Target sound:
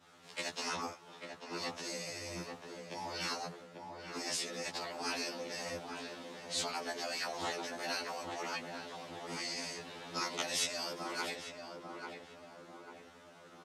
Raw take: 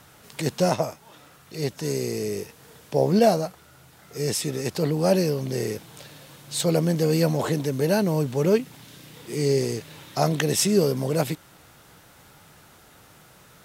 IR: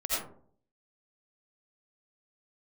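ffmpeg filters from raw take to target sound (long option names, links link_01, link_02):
-filter_complex "[0:a]afftfilt=real='re*lt(hypot(re,im),0.141)':imag='im*lt(hypot(re,im),0.141)':win_size=1024:overlap=0.75,highpass=220,lowpass=6000,agate=range=-33dB:threshold=-50dB:ratio=3:detection=peak,asplit=2[link_01][link_02];[link_02]adelay=842,lowpass=frequency=1400:poles=1,volume=-4dB,asplit=2[link_03][link_04];[link_04]adelay=842,lowpass=frequency=1400:poles=1,volume=0.54,asplit=2[link_05][link_06];[link_06]adelay=842,lowpass=frequency=1400:poles=1,volume=0.54,asplit=2[link_07][link_08];[link_08]adelay=842,lowpass=frequency=1400:poles=1,volume=0.54,asplit=2[link_09][link_10];[link_10]adelay=842,lowpass=frequency=1400:poles=1,volume=0.54,asplit=2[link_11][link_12];[link_12]adelay=842,lowpass=frequency=1400:poles=1,volume=0.54,asplit=2[link_13][link_14];[link_14]adelay=842,lowpass=frequency=1400:poles=1,volume=0.54[link_15];[link_01][link_03][link_05][link_07][link_09][link_11][link_13][link_15]amix=inputs=8:normalize=0,afreqshift=-15,afftfilt=real='re*2*eq(mod(b,4),0)':imag='im*2*eq(mod(b,4),0)':win_size=2048:overlap=0.75,volume=-1dB"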